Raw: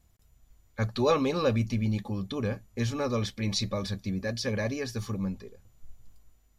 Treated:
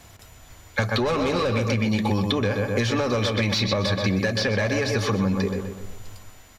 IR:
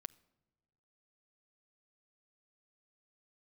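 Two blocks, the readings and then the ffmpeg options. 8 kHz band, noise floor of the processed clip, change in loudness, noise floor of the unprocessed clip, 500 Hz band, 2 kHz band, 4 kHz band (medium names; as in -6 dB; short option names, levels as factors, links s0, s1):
+5.5 dB, -49 dBFS, +6.5 dB, -64 dBFS, +6.5 dB, +12.0 dB, +9.5 dB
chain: -filter_complex "[0:a]bandreject=f=1200:w=20,asplit=2[s0][s1];[s1]adelay=125,lowpass=f=2900:p=1,volume=0.376,asplit=2[s2][s3];[s3]adelay=125,lowpass=f=2900:p=1,volume=0.45,asplit=2[s4][s5];[s5]adelay=125,lowpass=f=2900:p=1,volume=0.45,asplit=2[s6][s7];[s7]adelay=125,lowpass=f=2900:p=1,volume=0.45,asplit=2[s8][s9];[s9]adelay=125,lowpass=f=2900:p=1,volume=0.45[s10];[s0][s2][s4][s6][s8][s10]amix=inputs=6:normalize=0,asplit=2[s11][s12];[s12]highpass=f=720:p=1,volume=11.2,asoftclip=type=tanh:threshold=0.251[s13];[s11][s13]amix=inputs=2:normalize=0,lowpass=f=3700:p=1,volume=0.501,acompressor=threshold=0.0501:ratio=6,equalizer=f=96:t=o:w=0.39:g=9.5,acrossover=split=160|4600[s14][s15][s16];[s14]acompressor=threshold=0.00891:ratio=4[s17];[s15]acompressor=threshold=0.0178:ratio=4[s18];[s16]acompressor=threshold=0.00224:ratio=4[s19];[s17][s18][s19]amix=inputs=3:normalize=0,asplit=2[s20][s21];[1:a]atrim=start_sample=2205,asetrate=28665,aresample=44100[s22];[s21][s22]afir=irnorm=-1:irlink=0,volume=1.06[s23];[s20][s23]amix=inputs=2:normalize=0,volume=2.37"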